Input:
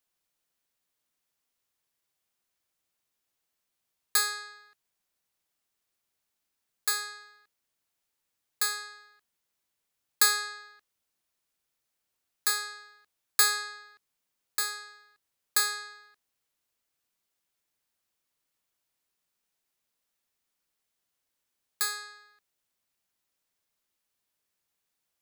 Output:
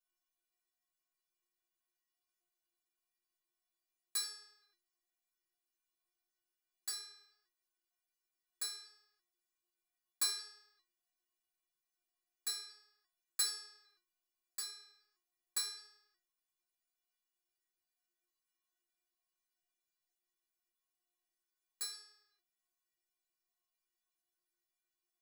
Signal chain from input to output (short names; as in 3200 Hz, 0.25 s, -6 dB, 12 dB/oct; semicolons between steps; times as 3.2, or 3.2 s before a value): flange 1.3 Hz, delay 0.4 ms, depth 8.9 ms, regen +17%; metallic resonator 350 Hz, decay 0.35 s, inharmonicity 0.008; short-mantissa float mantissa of 4-bit; gain +9.5 dB